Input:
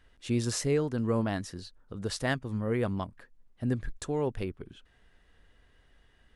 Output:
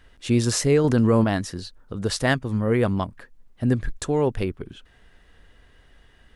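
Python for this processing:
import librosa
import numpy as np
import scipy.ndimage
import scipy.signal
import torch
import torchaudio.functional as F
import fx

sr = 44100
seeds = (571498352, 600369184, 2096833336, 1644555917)

y = fx.env_flatten(x, sr, amount_pct=70, at=(0.84, 1.24))
y = F.gain(torch.from_numpy(y), 8.5).numpy()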